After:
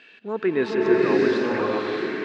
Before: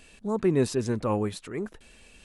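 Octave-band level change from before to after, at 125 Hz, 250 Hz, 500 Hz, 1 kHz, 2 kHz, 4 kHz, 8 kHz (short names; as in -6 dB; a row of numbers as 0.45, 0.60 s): -6.5 dB, +5.0 dB, +8.0 dB, +7.0 dB, +15.0 dB, +6.5 dB, under -10 dB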